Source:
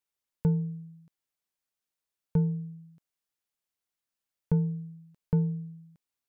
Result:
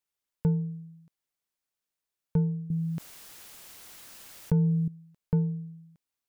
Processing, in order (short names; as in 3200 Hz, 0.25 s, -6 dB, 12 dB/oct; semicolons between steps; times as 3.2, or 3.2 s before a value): 2.7–4.88 fast leveller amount 70%